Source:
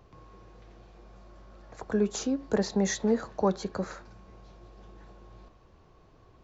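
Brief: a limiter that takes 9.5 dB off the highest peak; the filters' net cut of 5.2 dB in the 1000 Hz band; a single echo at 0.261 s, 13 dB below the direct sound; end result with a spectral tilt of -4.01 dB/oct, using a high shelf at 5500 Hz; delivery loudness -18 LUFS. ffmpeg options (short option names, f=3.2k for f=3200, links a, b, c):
-af "equalizer=f=1k:t=o:g=-7,highshelf=f=5.5k:g=7.5,alimiter=level_in=0.5dB:limit=-24dB:level=0:latency=1,volume=-0.5dB,aecho=1:1:261:0.224,volume=17dB"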